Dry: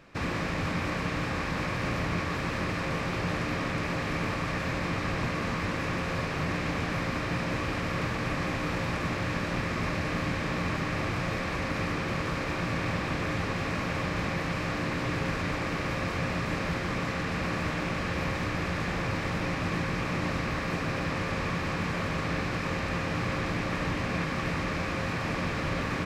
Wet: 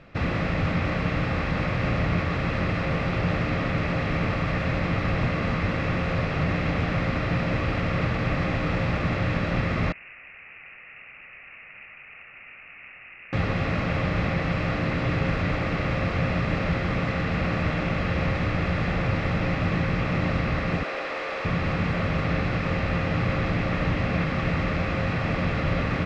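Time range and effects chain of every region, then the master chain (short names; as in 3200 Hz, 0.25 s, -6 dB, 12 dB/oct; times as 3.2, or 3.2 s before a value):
9.92–13.33 ladder band-pass 3200 Hz, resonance 40% + careless resampling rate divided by 8×, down none, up filtered
20.83–21.45 HPF 370 Hz 24 dB/oct + hard clip -28.5 dBFS
whole clip: LPF 3100 Hz 12 dB/oct; bell 1100 Hz -4.5 dB 2.1 oct; comb 1.5 ms, depth 31%; gain +6.5 dB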